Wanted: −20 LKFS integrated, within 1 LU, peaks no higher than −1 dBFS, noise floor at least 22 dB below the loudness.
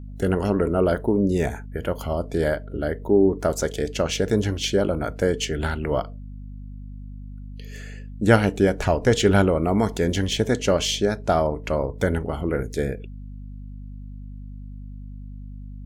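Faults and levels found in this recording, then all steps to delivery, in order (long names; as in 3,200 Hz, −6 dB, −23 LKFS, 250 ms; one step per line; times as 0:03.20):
mains hum 50 Hz; hum harmonics up to 250 Hz; level of the hum −35 dBFS; integrated loudness −22.5 LKFS; sample peak −2.5 dBFS; target loudness −20.0 LKFS
→ hum removal 50 Hz, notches 5
level +2.5 dB
brickwall limiter −1 dBFS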